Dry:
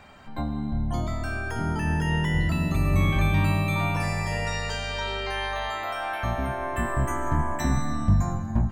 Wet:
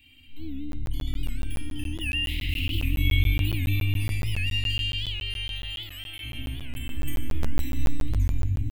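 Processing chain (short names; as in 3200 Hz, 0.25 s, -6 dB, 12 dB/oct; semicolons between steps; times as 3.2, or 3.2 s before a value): 2.28–2.85 self-modulated delay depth 0.37 ms; on a send: echo 0.991 s -20.5 dB; on the sum: transient shaper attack -6 dB, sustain +6 dB; EQ curve 120 Hz 0 dB, 170 Hz -25 dB, 280 Hz +1 dB, 530 Hz -30 dB, 950 Hz -25 dB, 1400 Hz -26 dB, 2800 Hz +15 dB, 5700 Hz -10 dB, 13000 Hz +15 dB; shoebox room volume 1100 m³, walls mixed, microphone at 2.3 m; crackling interface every 0.14 s, samples 512, zero, from 0.72; record warp 78 rpm, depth 160 cents; gain -9 dB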